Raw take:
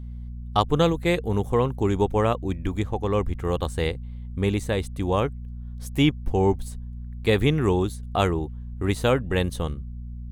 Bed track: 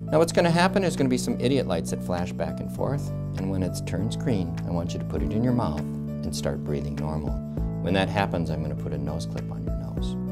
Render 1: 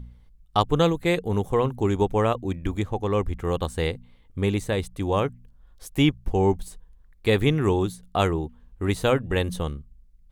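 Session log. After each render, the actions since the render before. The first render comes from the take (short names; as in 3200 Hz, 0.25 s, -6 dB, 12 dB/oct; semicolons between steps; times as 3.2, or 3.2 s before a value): de-hum 60 Hz, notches 4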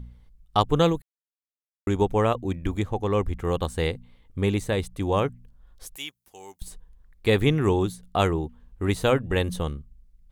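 1.02–1.87 mute; 5.96–6.62 differentiator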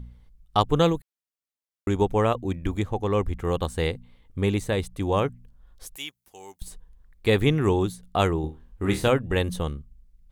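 8.41–9.08 flutter echo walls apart 4.4 m, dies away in 0.26 s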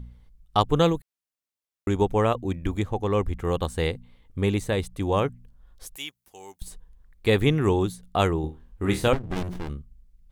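9.13–9.7 running maximum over 65 samples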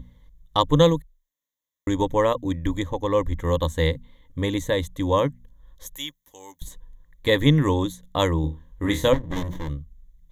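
ripple EQ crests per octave 1.1, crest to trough 13 dB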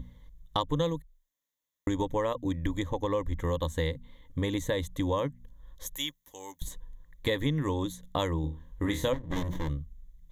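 compressor 4:1, threshold -27 dBFS, peak gain reduction 13.5 dB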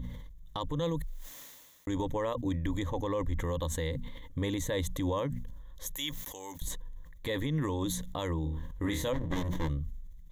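limiter -23.5 dBFS, peak gain reduction 9.5 dB; sustainer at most 36 dB/s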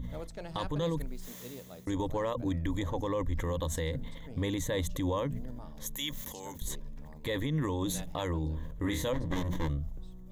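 add bed track -23 dB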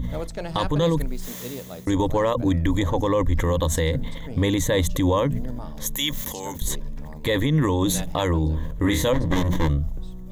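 gain +11 dB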